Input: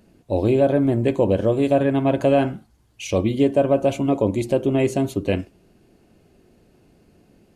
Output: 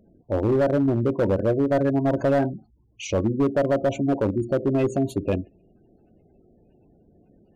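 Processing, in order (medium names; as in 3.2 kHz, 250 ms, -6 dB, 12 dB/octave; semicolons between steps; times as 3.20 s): spectral gate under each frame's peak -20 dB strong; overload inside the chain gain 14.5 dB; trim -1.5 dB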